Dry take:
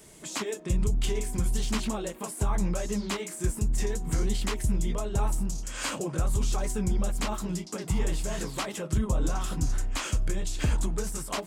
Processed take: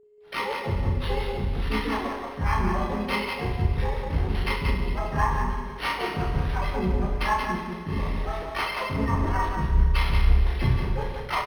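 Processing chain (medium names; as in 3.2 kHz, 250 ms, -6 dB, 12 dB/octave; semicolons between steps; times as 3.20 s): expander on every frequency bin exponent 2; hum notches 50/100/150/200 Hz; gate -42 dBFS, range -16 dB; resonant high shelf 6.6 kHz -6 dB, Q 3; overload inside the chain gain 26.5 dB; small resonant body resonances 900/2100 Hz, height 16 dB, ringing for 30 ms; harmony voices +4 st -1 dB, +12 st -2 dB; whistle 420 Hz -54 dBFS; doubling 33 ms -4 dB; loudspeakers at several distances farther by 11 m -6 dB, 62 m -5 dB; Schroeder reverb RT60 1.9 s, combs from 31 ms, DRR 4.5 dB; decimation joined by straight lines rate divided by 6×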